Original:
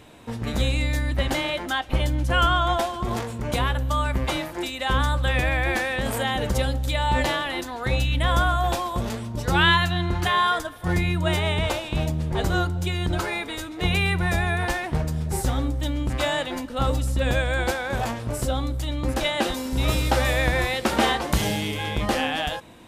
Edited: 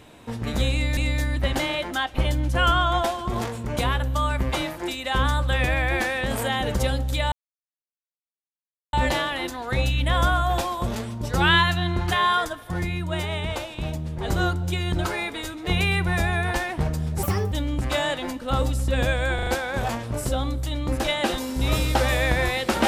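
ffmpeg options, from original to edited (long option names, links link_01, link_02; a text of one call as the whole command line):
ffmpeg -i in.wav -filter_complex "[0:a]asplit=10[link_01][link_02][link_03][link_04][link_05][link_06][link_07][link_08][link_09][link_10];[link_01]atrim=end=0.972[link_11];[link_02]atrim=start=0.718:end=7.07,asetpts=PTS-STARTPTS,afade=type=out:start_time=6.348:duration=0.004:curve=hsin,apad=pad_dur=1.61[link_12];[link_03]atrim=start=7.07:end=10.862,asetpts=PTS-STARTPTS,afade=type=in:duration=0.004:curve=hsin[link_13];[link_04]atrim=start=10.858:end=12.422,asetpts=PTS-STARTPTS,volume=-4.5dB[link_14];[link_05]atrim=start=12.418:end=15.374[link_15];[link_06]atrim=start=15.37:end=15.8,asetpts=PTS-STARTPTS,asetrate=66150,aresample=44100[link_16];[link_07]atrim=start=15.796:end=17.672[link_17];[link_08]atrim=start=17.628:end=17.672[link_18];[link_09]atrim=start=17.628:end=17.672[link_19];[link_10]atrim=start=17.628[link_20];[link_12][link_13]concat=n=2:v=0:a=1[link_21];[link_11][link_21]acrossfade=duration=0.004:curve1=hsin:curve2=hsin[link_22];[link_22][link_14]acrossfade=duration=0.004:curve1=hsin:curve2=hsin[link_23];[link_23][link_15]acrossfade=duration=0.004:curve1=hsin:curve2=hsin[link_24];[link_24][link_16]acrossfade=duration=0.004:curve1=hsin:curve2=hsin[link_25];[link_25][link_17]acrossfade=duration=0.004:curve1=hsin:curve2=hsin[link_26];[link_26][link_18]acrossfade=duration=0.004:curve1=hsin:curve2=hsin[link_27];[link_27][link_19]acrossfade=duration=0.004:curve1=hsin:curve2=hsin[link_28];[link_28][link_20]acrossfade=duration=0.004:curve1=hsin:curve2=hsin" out.wav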